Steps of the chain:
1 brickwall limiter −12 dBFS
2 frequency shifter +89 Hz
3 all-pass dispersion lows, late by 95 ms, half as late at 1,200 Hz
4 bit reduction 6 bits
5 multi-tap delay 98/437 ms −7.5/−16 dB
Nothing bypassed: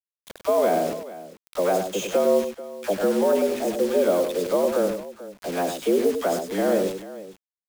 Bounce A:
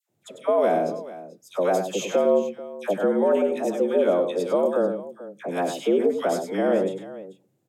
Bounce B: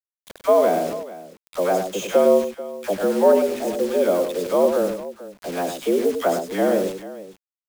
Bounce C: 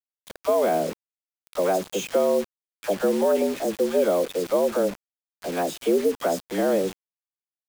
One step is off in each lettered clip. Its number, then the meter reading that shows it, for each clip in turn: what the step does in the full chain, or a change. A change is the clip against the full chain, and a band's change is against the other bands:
4, distortion level −18 dB
1, change in crest factor +2.0 dB
5, change in momentary loudness spread −4 LU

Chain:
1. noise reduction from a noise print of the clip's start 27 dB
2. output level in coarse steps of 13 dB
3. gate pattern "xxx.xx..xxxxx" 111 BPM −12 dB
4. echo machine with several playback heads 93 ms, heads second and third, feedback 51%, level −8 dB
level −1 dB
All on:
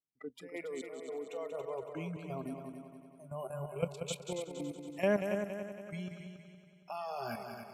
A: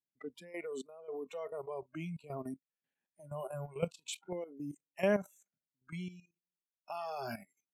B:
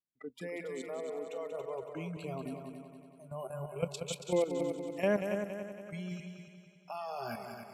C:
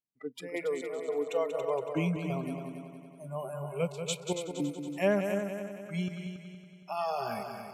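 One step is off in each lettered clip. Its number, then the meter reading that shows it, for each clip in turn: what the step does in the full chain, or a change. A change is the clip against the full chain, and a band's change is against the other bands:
4, echo-to-direct ratio −4.0 dB to none audible
3, change in crest factor −1.5 dB
2, change in crest factor −3.0 dB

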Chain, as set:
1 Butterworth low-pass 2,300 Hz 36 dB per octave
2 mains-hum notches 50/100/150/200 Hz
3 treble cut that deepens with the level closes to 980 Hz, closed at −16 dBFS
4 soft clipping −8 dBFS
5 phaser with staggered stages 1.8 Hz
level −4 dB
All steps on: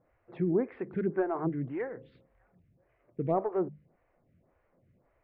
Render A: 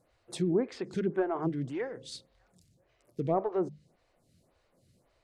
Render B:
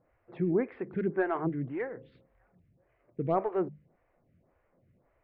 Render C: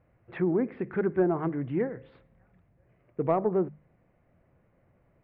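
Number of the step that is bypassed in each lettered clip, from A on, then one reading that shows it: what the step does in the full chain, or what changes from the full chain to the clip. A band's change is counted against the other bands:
1, change in momentary loudness spread +7 LU
3, 2 kHz band +5.0 dB
5, change in integrated loudness +3.5 LU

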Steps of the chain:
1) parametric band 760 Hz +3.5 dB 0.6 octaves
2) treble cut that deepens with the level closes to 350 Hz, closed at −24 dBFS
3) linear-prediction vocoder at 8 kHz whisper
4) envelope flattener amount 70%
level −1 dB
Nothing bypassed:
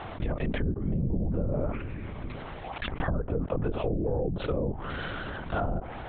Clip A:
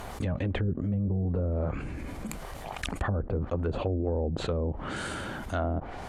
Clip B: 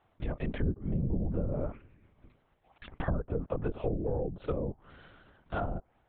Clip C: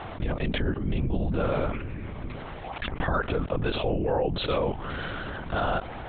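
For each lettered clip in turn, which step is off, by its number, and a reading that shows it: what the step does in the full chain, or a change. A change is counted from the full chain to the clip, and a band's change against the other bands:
3, 4 kHz band +2.0 dB
4, change in momentary loudness spread −1 LU
2, 4 kHz band +4.5 dB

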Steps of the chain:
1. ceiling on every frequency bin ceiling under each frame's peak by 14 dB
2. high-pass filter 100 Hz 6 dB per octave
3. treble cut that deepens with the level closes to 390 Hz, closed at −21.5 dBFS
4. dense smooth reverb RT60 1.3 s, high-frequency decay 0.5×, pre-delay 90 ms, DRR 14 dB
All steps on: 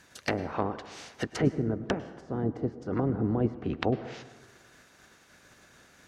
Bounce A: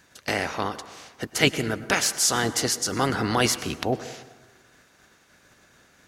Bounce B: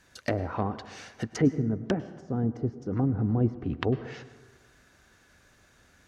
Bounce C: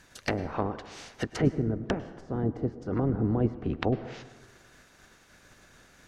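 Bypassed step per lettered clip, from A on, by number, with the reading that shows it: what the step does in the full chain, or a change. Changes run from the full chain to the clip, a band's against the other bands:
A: 3, 4 kHz band +14.5 dB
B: 1, 125 Hz band +5.0 dB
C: 2, 125 Hz band +3.0 dB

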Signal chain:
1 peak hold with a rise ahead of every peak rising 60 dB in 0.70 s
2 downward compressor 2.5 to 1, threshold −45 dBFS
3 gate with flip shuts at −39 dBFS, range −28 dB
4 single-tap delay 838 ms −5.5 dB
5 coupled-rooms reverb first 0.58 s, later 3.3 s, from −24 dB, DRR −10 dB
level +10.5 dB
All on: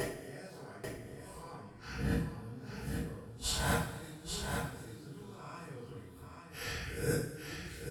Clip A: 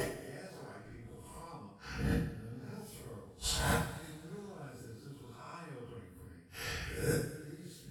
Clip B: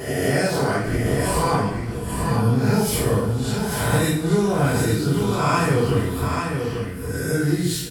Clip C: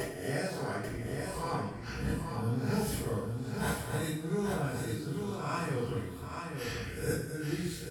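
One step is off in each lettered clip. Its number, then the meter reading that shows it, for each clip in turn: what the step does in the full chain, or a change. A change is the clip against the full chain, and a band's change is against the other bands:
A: 4, change in momentary loudness spread +2 LU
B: 3, change in momentary loudness spread −8 LU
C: 2, average gain reduction 10.5 dB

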